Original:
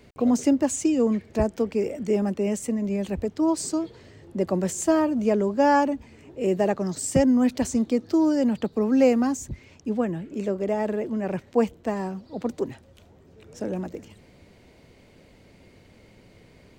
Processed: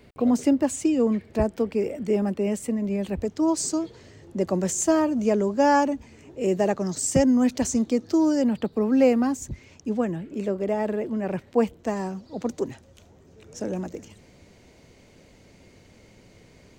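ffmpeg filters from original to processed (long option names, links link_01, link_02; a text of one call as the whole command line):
ffmpeg -i in.wav -af "asetnsamples=nb_out_samples=441:pad=0,asendcmd='3.21 equalizer g 6.5;8.42 equalizer g -5;9.42 equalizer g 5;10.16 equalizer g -2.5;11.79 equalizer g 8',equalizer=frequency=6400:width_type=o:width=0.55:gain=-5" out.wav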